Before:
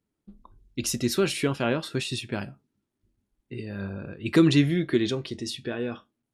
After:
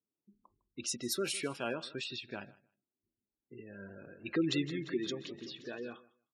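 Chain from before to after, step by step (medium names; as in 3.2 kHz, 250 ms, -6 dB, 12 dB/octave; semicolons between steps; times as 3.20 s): level-controlled noise filter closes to 870 Hz, open at -22 dBFS; high-pass 390 Hz 6 dB/octave; spectral gate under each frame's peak -20 dB strong; treble shelf 7.5 kHz +12 dB; feedback delay 155 ms, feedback 15%, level -20.5 dB; 3.71–5.93 s: modulated delay 174 ms, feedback 62%, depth 120 cents, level -13.5 dB; trim -8.5 dB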